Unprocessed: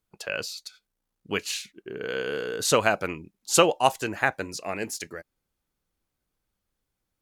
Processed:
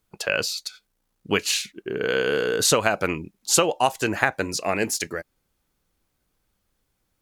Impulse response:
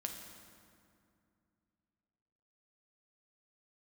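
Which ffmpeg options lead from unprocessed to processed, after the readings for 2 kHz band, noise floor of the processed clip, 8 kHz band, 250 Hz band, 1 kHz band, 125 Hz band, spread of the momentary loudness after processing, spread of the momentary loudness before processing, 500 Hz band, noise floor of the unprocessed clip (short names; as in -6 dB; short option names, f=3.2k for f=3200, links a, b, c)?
+4.0 dB, -75 dBFS, +5.5 dB, +4.0 dB, +1.0 dB, +4.0 dB, 12 LU, 18 LU, +2.5 dB, -83 dBFS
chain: -af "acompressor=threshold=-24dB:ratio=6,volume=8dB"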